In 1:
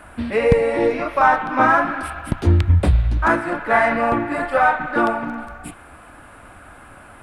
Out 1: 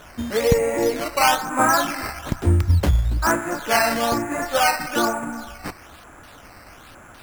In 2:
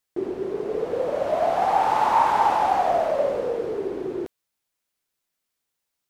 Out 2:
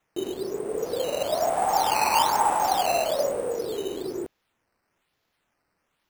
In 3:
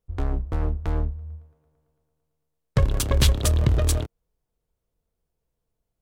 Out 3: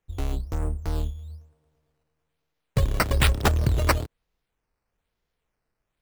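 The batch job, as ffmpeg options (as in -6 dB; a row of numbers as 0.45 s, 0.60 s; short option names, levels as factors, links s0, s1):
-af "highshelf=f=7100:t=q:w=3:g=7.5,acrusher=samples=9:mix=1:aa=0.000001:lfo=1:lforange=9:lforate=1.1,volume=0.75"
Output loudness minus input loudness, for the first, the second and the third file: -2.5 LU, -2.0 LU, -1.5 LU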